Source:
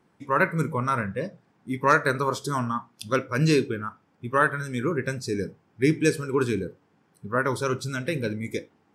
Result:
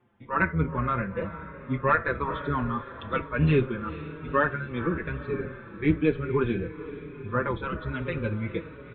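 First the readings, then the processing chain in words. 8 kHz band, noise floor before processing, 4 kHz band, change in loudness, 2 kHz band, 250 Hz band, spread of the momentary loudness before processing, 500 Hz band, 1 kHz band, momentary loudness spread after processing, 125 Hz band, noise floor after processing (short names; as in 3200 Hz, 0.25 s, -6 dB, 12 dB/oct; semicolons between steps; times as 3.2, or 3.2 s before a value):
under -40 dB, -66 dBFS, -9.0 dB, -2.5 dB, -3.0 dB, -1.5 dB, 12 LU, -3.0 dB, -3.0 dB, 12 LU, 0.0 dB, -45 dBFS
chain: octaver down 1 oct, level -4 dB; steep low-pass 3600 Hz 96 dB/oct; on a send: diffused feedback echo 0.457 s, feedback 57%, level -13 dB; on the sum: endless flanger 5.2 ms -1.1 Hz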